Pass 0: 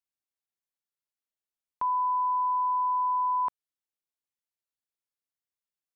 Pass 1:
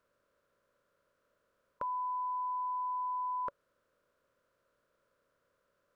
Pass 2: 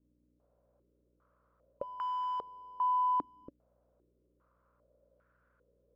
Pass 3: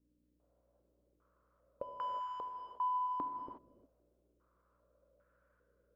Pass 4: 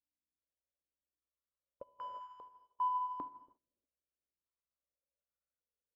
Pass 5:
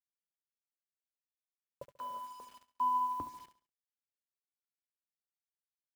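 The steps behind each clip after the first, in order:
compressor on every frequency bin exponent 0.6; drawn EQ curve 350 Hz 0 dB, 570 Hz +12 dB, 820 Hz −18 dB, 1,400 Hz +6 dB, 2,000 Hz −5 dB
each half-wave held at its own peak; mains hum 60 Hz, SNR 33 dB; low-pass on a step sequencer 2.5 Hz 290–1,500 Hz; level −6 dB
reverb whose tail is shaped and stops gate 390 ms flat, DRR 3.5 dB; level −3.5 dB
expander for the loud parts 2.5 to 1, over −55 dBFS; level +2 dB
sub-octave generator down 2 octaves, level −2 dB; bit reduction 10 bits; repeating echo 69 ms, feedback 37%, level −14.5 dB; level +2 dB

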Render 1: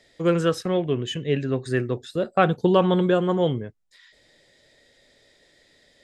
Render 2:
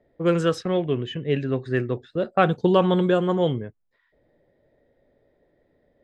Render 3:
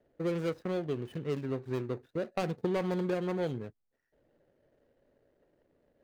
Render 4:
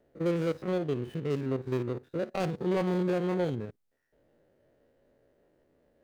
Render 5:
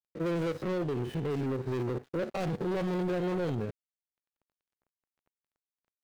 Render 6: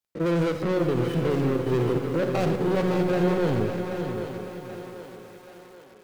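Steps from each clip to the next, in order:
low-pass that shuts in the quiet parts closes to 760 Hz, open at −16 dBFS
running median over 41 samples; low-shelf EQ 210 Hz −5 dB; downward compressor 2 to 1, threshold −30 dBFS, peak gain reduction 7.5 dB; level −3 dB
spectrum averaged block by block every 50 ms; level +4 dB
brickwall limiter −26 dBFS, peak gain reduction 7.5 dB; leveller curve on the samples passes 2; dead-zone distortion −54.5 dBFS
feedback echo with a high-pass in the loop 781 ms, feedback 51%, high-pass 250 Hz, level −9 dB; on a send at −8.5 dB: convolution reverb RT60 1.0 s, pre-delay 49 ms; on the sum: feedback echo at a low word length 563 ms, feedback 35%, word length 9 bits, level −8 dB; level +6.5 dB

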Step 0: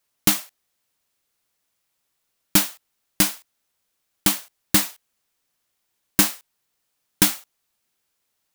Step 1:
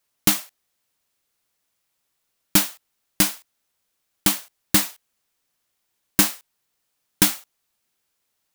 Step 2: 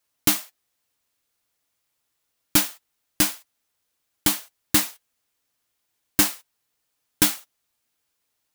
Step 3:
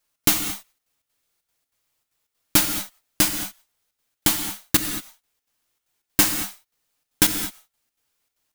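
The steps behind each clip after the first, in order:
no processing that can be heard
notch comb filter 190 Hz
gain on one half-wave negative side −3 dB; gate pattern "xx.xx.xx" 192 BPM; convolution reverb, pre-delay 3 ms, DRR 5.5 dB; level +2.5 dB

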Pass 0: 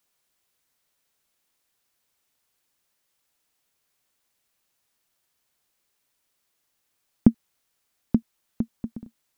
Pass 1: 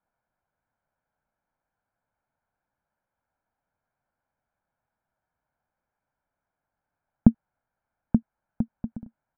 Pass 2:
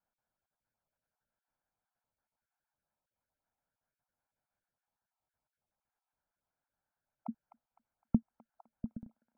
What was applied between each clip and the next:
low-pass filter 1,500 Hz 24 dB per octave; comb filter 1.3 ms, depth 55%
time-frequency cells dropped at random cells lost 27%; delay with a high-pass on its return 255 ms, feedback 37%, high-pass 1,400 Hz, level −5 dB; level −7 dB

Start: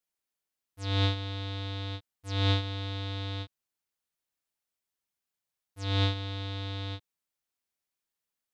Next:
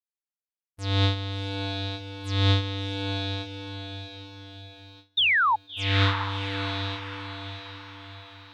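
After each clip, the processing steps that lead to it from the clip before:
sound drawn into the spectrogram fall, 0:05.17–0:05.56, 820–3,800 Hz −25 dBFS
feedback delay with all-pass diffusion 678 ms, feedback 49%, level −7.5 dB
noise gate with hold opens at −44 dBFS
level +4 dB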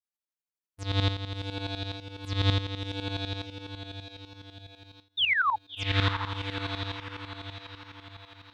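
shaped tremolo saw up 12 Hz, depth 80%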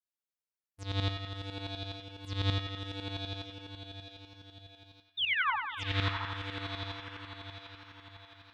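feedback echo with a band-pass in the loop 95 ms, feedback 70%, band-pass 1,800 Hz, level −5 dB
level −6 dB

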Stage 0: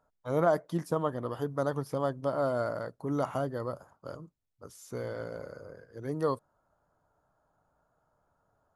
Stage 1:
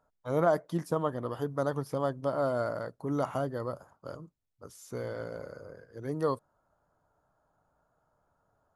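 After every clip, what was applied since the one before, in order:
no processing that can be heard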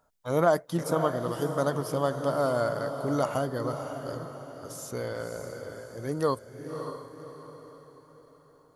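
high-shelf EQ 2,800 Hz +8.5 dB
feedback delay with all-pass diffusion 571 ms, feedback 44%, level −8 dB
level +2.5 dB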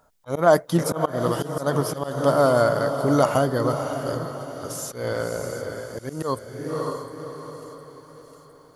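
volume swells 165 ms
delay with a high-pass on its return 709 ms, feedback 61%, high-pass 2,400 Hz, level −13 dB
level +8.5 dB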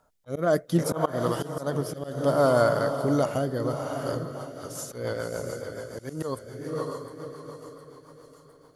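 rotating-speaker cabinet horn 0.65 Hz, later 7 Hz, at 0:03.89
level −2 dB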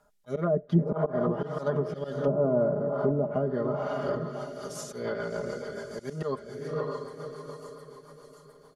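treble cut that deepens with the level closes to 450 Hz, closed at −20 dBFS
comb filter 4.9 ms, depth 91%
level −2 dB

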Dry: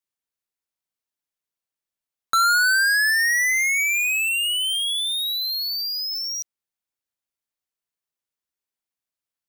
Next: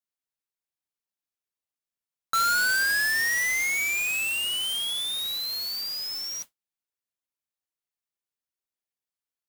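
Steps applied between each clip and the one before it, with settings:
noise that follows the level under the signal 11 dB
level −5.5 dB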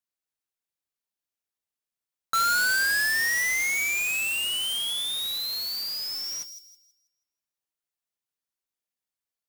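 delay with a high-pass on its return 162 ms, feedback 32%, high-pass 4,700 Hz, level −8 dB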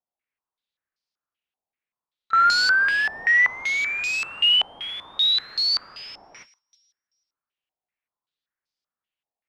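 echo ahead of the sound 30 ms −22 dB
low-pass on a step sequencer 5.2 Hz 780–4,900 Hz

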